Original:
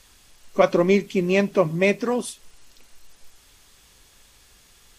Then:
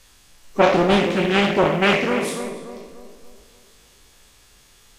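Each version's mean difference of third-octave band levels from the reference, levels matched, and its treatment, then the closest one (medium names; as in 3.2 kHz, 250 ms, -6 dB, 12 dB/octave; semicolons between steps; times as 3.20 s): 9.0 dB: spectral sustain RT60 0.81 s; tape echo 290 ms, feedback 49%, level -6.5 dB, low-pass 1.6 kHz; dynamic bell 2.3 kHz, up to +4 dB, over -37 dBFS, Q 1.1; loudspeaker Doppler distortion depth 0.57 ms; trim -1 dB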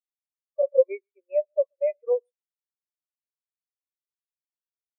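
20.0 dB: steep high-pass 500 Hz 36 dB/octave; peak limiter -17 dBFS, peak gain reduction 11.5 dB; on a send: delay 131 ms -14 dB; on the sum: spectral contrast expander 4:1; trim +7.5 dB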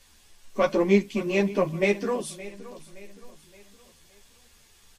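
2.5 dB: in parallel at -7 dB: one-sided clip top -20.5 dBFS; on the sum: band-stop 1.3 kHz, Q 13; feedback delay 569 ms, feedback 42%, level -17 dB; three-phase chorus; trim -3.5 dB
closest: third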